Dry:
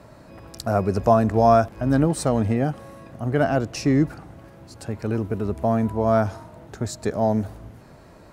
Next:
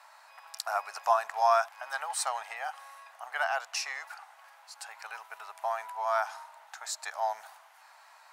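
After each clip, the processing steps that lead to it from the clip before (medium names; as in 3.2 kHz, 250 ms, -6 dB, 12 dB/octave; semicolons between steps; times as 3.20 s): elliptic high-pass 810 Hz, stop band 60 dB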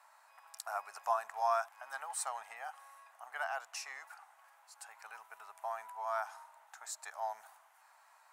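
FFT filter 330 Hz 0 dB, 530 Hz -6 dB, 1.1 kHz -4 dB, 4.6 kHz -10 dB, 7.9 kHz -2 dB; trim -3 dB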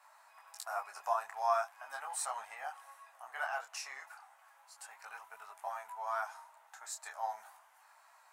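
detune thickener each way 13 cents; trim +4.5 dB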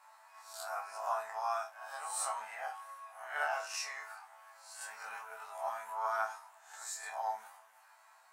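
reverse spectral sustain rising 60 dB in 0.51 s; chord resonator D2 fifth, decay 0.25 s; gain riding within 4 dB 2 s; trim +8.5 dB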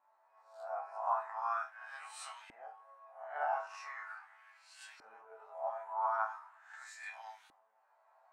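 LFO band-pass saw up 0.4 Hz 300–3600 Hz; trim +4 dB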